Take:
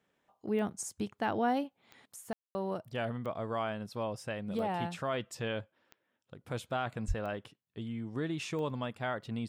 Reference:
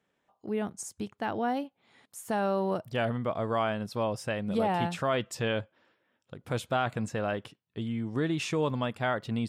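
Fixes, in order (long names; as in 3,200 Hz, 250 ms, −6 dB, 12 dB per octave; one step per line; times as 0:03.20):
click removal
high-pass at the plosives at 0:07.07
ambience match 0:02.33–0:02.55
level 0 dB, from 0:02.16 +6 dB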